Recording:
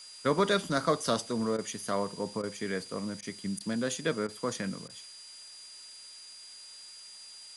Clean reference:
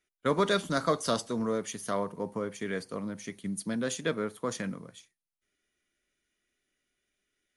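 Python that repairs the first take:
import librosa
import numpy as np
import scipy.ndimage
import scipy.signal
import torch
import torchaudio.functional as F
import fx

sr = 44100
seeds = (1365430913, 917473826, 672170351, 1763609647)

y = fx.notch(x, sr, hz=4800.0, q=30.0)
y = fx.fix_interpolate(y, sr, at_s=(1.57, 2.42, 3.21, 3.59, 4.27, 4.88), length_ms=14.0)
y = fx.noise_reduce(y, sr, print_start_s=5.92, print_end_s=6.42, reduce_db=30.0)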